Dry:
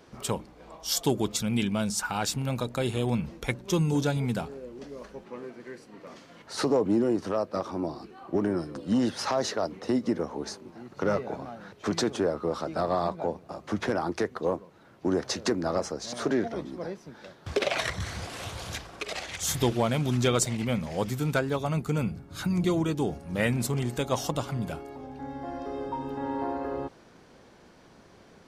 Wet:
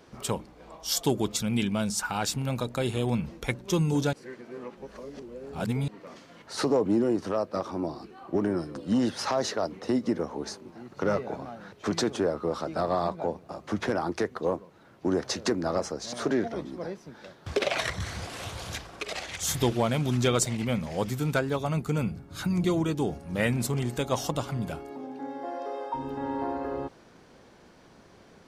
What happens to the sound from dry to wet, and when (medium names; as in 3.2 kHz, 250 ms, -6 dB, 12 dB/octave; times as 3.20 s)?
4.13–5.88 s: reverse
24.89–25.93 s: resonant high-pass 210 Hz -> 700 Hz, resonance Q 1.6